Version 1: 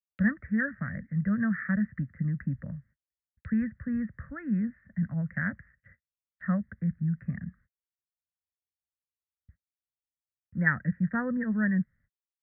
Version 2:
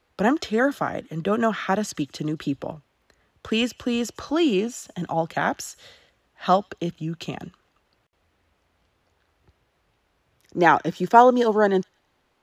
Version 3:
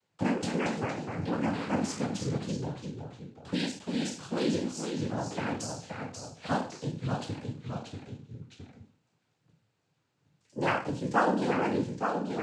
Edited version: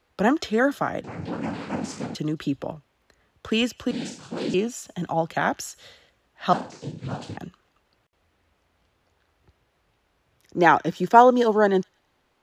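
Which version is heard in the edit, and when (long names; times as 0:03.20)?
2
0:01.04–0:02.15: punch in from 3
0:03.91–0:04.54: punch in from 3
0:06.53–0:07.37: punch in from 3
not used: 1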